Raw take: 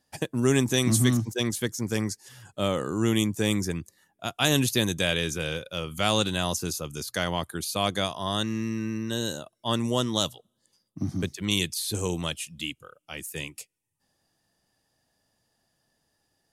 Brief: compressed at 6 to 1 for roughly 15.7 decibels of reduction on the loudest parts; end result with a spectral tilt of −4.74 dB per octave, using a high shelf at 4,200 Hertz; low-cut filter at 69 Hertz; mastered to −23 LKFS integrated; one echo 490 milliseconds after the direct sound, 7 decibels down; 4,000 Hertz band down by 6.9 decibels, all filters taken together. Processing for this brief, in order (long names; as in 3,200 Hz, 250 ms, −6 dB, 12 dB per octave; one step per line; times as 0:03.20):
high-pass filter 69 Hz
parametric band 4,000 Hz −6.5 dB
high-shelf EQ 4,200 Hz −4.5 dB
downward compressor 6 to 1, threshold −35 dBFS
single-tap delay 490 ms −7 dB
level +16 dB